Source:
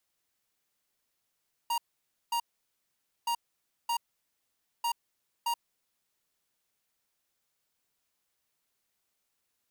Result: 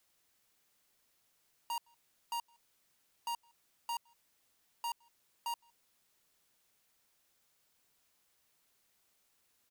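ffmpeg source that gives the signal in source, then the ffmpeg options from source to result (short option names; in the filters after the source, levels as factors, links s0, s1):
-f lavfi -i "aevalsrc='0.0335*(2*lt(mod(939*t,1),0.5)-1)*clip(min(mod(mod(t,1.57),0.62),0.08-mod(mod(t,1.57),0.62))/0.005,0,1)*lt(mod(t,1.57),1.24)':d=4.71:s=44100"
-filter_complex "[0:a]asplit=2[s0][s1];[s1]acompressor=threshold=0.00794:ratio=6,volume=0.841[s2];[s0][s2]amix=inputs=2:normalize=0,asoftclip=type=tanh:threshold=0.015,asplit=2[s3][s4];[s4]adelay=163.3,volume=0.0316,highshelf=f=4000:g=-3.67[s5];[s3][s5]amix=inputs=2:normalize=0"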